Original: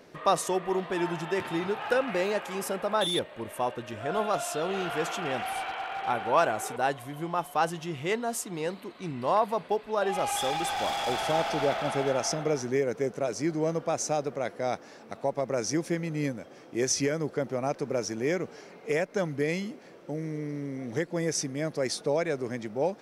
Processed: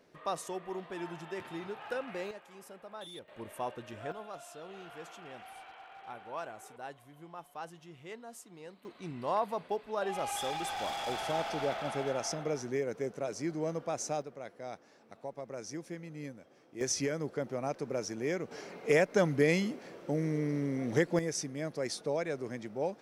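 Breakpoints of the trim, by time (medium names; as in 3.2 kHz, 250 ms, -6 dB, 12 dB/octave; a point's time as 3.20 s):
-11 dB
from 2.31 s -19 dB
from 3.28 s -7.5 dB
from 4.12 s -17 dB
from 8.85 s -6.5 dB
from 14.22 s -13 dB
from 16.81 s -5.5 dB
from 18.51 s +2 dB
from 21.19 s -6 dB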